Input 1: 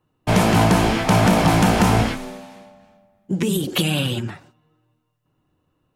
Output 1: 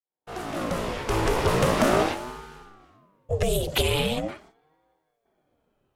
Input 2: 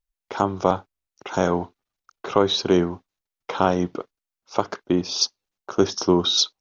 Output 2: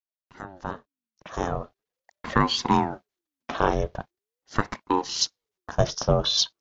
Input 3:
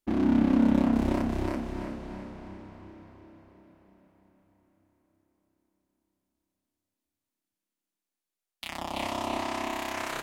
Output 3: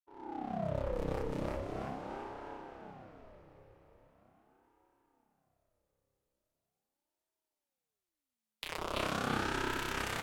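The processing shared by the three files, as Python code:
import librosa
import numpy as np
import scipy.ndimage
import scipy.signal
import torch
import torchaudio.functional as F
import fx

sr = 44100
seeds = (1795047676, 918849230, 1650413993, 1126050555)

y = fx.fade_in_head(x, sr, length_s=2.33)
y = fx.ring_lfo(y, sr, carrier_hz=430.0, swing_pct=50, hz=0.41)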